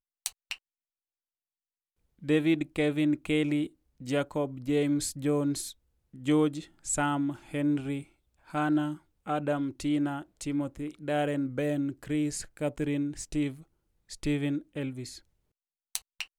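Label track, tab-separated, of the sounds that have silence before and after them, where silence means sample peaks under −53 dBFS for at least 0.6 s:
2.190000	15.210000	sound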